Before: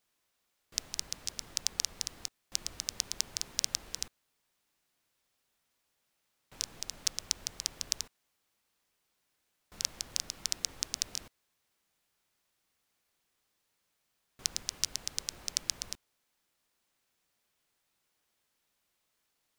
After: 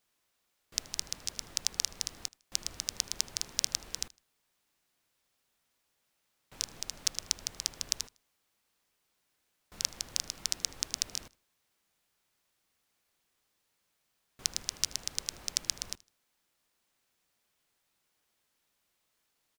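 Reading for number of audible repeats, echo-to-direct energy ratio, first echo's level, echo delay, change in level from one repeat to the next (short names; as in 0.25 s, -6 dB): 2, -23.0 dB, -23.5 dB, 78 ms, -10.5 dB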